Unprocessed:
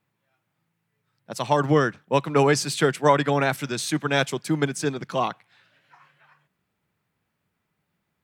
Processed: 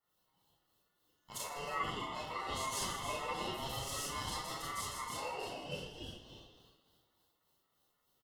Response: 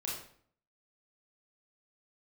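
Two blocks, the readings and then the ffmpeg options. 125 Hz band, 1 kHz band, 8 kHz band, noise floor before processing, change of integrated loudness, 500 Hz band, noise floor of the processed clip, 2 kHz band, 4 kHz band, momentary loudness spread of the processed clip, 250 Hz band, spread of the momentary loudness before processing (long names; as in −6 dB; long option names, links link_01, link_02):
−21.5 dB, −14.0 dB, −9.0 dB, −78 dBFS, −17.0 dB, −22.0 dB, −80 dBFS, −16.5 dB, −9.5 dB, 10 LU, −23.0 dB, 8 LU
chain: -filter_complex "[0:a]highpass=280,asplit=9[link_01][link_02][link_03][link_04][link_05][link_06][link_07][link_08][link_09];[link_02]adelay=159,afreqshift=120,volume=-3dB[link_10];[link_03]adelay=318,afreqshift=240,volume=-7.9dB[link_11];[link_04]adelay=477,afreqshift=360,volume=-12.8dB[link_12];[link_05]adelay=636,afreqshift=480,volume=-17.6dB[link_13];[link_06]adelay=795,afreqshift=600,volume=-22.5dB[link_14];[link_07]adelay=954,afreqshift=720,volume=-27.4dB[link_15];[link_08]adelay=1113,afreqshift=840,volume=-32.3dB[link_16];[link_09]adelay=1272,afreqshift=960,volume=-37.2dB[link_17];[link_01][link_10][link_11][link_12][link_13][link_14][link_15][link_16][link_17]amix=inputs=9:normalize=0,acompressor=threshold=-38dB:ratio=2.5,asoftclip=type=tanh:threshold=-26dB,acrossover=split=810[link_18][link_19];[link_18]aeval=exprs='val(0)*(1-0.7/2+0.7/2*cos(2*PI*3.4*n/s))':channel_layout=same[link_20];[link_19]aeval=exprs='val(0)*(1-0.7/2-0.7/2*cos(2*PI*3.4*n/s))':channel_layout=same[link_21];[link_20][link_21]amix=inputs=2:normalize=0[link_22];[1:a]atrim=start_sample=2205[link_23];[link_22][link_23]afir=irnorm=-1:irlink=0,flanger=delay=5.2:depth=6.6:regen=46:speed=0.96:shape=sinusoidal,highshelf=frequency=8100:gain=8,aeval=exprs='val(0)*sin(2*PI*1600*n/s)':channel_layout=same,asuperstop=centerf=2400:order=20:qfactor=7.2,equalizer=frequency=2100:width_type=o:width=0.81:gain=-9.5,volume=7dB"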